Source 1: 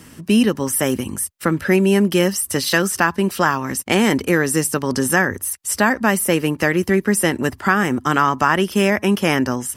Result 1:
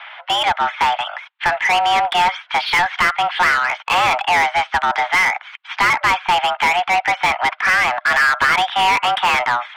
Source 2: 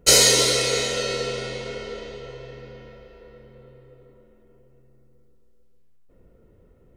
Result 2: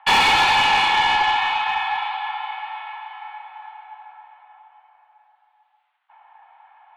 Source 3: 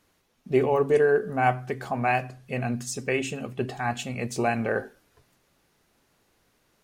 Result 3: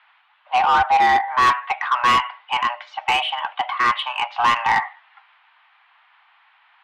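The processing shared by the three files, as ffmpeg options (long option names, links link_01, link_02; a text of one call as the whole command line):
ffmpeg -i in.wav -filter_complex "[0:a]highpass=frequency=490:width_type=q:width=0.5412,highpass=frequency=490:width_type=q:width=1.307,lowpass=frequency=3100:width_type=q:width=0.5176,lowpass=frequency=3100:width_type=q:width=0.7071,lowpass=frequency=3100:width_type=q:width=1.932,afreqshift=360,asplit=2[link_01][link_02];[link_02]highpass=frequency=720:poles=1,volume=27dB,asoftclip=type=tanh:threshold=-2.5dB[link_03];[link_01][link_03]amix=inputs=2:normalize=0,lowpass=frequency=2600:poles=1,volume=-6dB,volume=-3.5dB" out.wav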